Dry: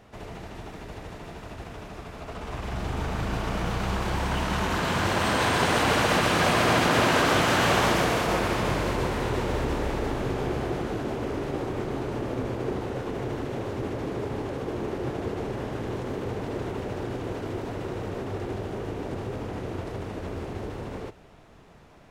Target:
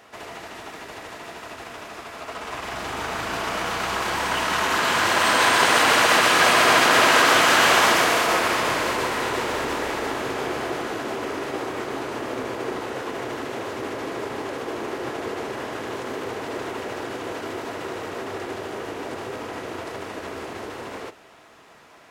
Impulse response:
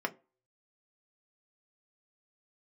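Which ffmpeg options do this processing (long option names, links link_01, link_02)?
-filter_complex "[0:a]highpass=frequency=210:poles=1,tiltshelf=frequency=1100:gain=-6,asplit=2[link_01][link_02];[1:a]atrim=start_sample=2205,lowpass=4400[link_03];[link_02][link_03]afir=irnorm=-1:irlink=0,volume=-11.5dB[link_04];[link_01][link_04]amix=inputs=2:normalize=0,volume=3.5dB"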